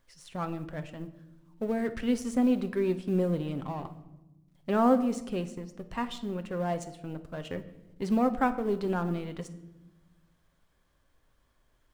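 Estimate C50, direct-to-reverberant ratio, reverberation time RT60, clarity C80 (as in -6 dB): 13.5 dB, 9.0 dB, 1.0 s, 16.5 dB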